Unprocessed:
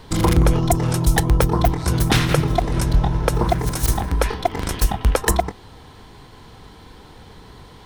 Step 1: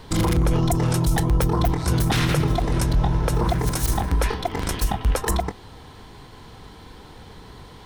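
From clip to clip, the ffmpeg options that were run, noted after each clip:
-af "alimiter=limit=-12dB:level=0:latency=1:release=17"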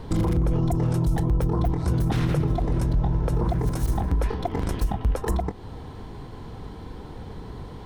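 -af "tiltshelf=f=1.1k:g=6.5,acompressor=threshold=-26dB:ratio=2"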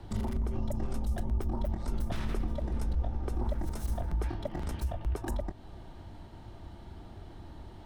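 -af "afreqshift=-110,volume=-8.5dB"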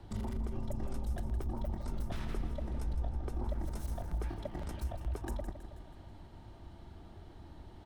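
-af "aecho=1:1:161|322|483|644|805|966:0.282|0.149|0.0792|0.042|0.0222|0.0118,volume=-5dB" -ar 48000 -c:a libopus -b:a 256k

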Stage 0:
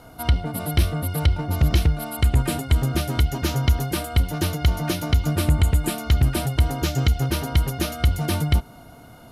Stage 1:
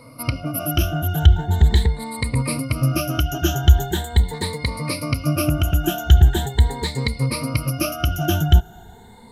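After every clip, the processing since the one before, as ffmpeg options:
-af "afftfilt=real='re*pow(10,21/40*sin(2*PI*(0.95*log(max(b,1)*sr/1024/100)/log(2)-(0.41)*(pts-256)/sr)))':imag='im*pow(10,21/40*sin(2*PI*(0.95*log(max(b,1)*sr/1024/100)/log(2)-(0.41)*(pts-256)/sr)))':win_size=1024:overlap=0.75,volume=-2.5dB"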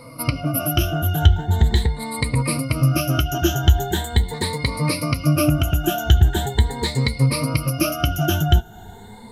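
-filter_complex "[0:a]asplit=2[a][b];[b]acompressor=threshold=-23dB:ratio=6,volume=0dB[c];[a][c]amix=inputs=2:normalize=0,flanger=delay=5.7:depth=4.3:regen=56:speed=0.39:shape=triangular,volume=2dB"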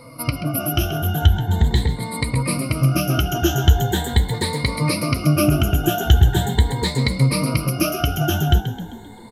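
-filter_complex "[0:a]dynaudnorm=f=390:g=9:m=11.5dB,asplit=2[a][b];[b]asplit=5[c][d][e][f][g];[c]adelay=131,afreqshift=55,volume=-11dB[h];[d]adelay=262,afreqshift=110,volume=-17.4dB[i];[e]adelay=393,afreqshift=165,volume=-23.8dB[j];[f]adelay=524,afreqshift=220,volume=-30.1dB[k];[g]adelay=655,afreqshift=275,volume=-36.5dB[l];[h][i][j][k][l]amix=inputs=5:normalize=0[m];[a][m]amix=inputs=2:normalize=0,volume=-1dB"

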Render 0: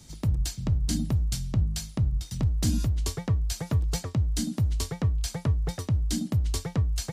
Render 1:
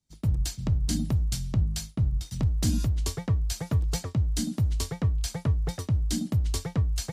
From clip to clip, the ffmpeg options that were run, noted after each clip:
-af "agate=range=-33dB:threshold=-33dB:ratio=3:detection=peak"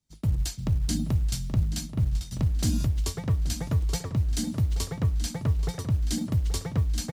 -filter_complex "[0:a]acrusher=bits=9:mode=log:mix=0:aa=0.000001,asplit=2[a][b];[b]adelay=829,lowpass=f=4.7k:p=1,volume=-11dB,asplit=2[c][d];[d]adelay=829,lowpass=f=4.7k:p=1,volume=0.31,asplit=2[e][f];[f]adelay=829,lowpass=f=4.7k:p=1,volume=0.31[g];[a][c][e][g]amix=inputs=4:normalize=0"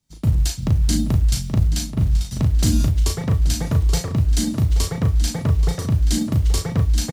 -filter_complex "[0:a]asplit=2[a][b];[b]adelay=36,volume=-5dB[c];[a][c]amix=inputs=2:normalize=0,volume=6.5dB"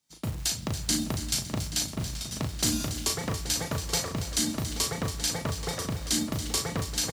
-filter_complex "[0:a]highpass=f=610:p=1,asplit=2[a][b];[b]aecho=0:1:280|560|840|1120|1400:0.266|0.125|0.0588|0.0276|0.013[c];[a][c]amix=inputs=2:normalize=0"

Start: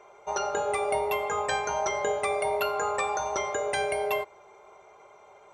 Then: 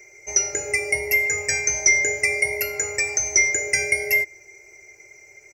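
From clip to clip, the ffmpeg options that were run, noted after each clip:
-af "firequalizer=gain_entry='entry(130,0);entry(200,-20);entry(310,-1);entry(440,-10);entry(1100,-30);entry(2100,11);entry(3400,-29);entry(5200,15);entry(8800,1);entry(13000,12)':delay=0.05:min_phase=1,volume=8dB"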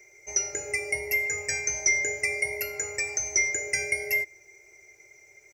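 -af "acrusher=bits=10:mix=0:aa=0.000001,volume=-6.5dB"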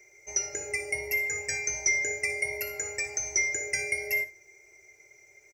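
-af "aecho=1:1:60|76:0.237|0.133,volume=-2.5dB"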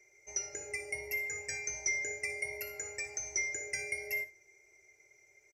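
-af "aresample=32000,aresample=44100,volume=-7.5dB"

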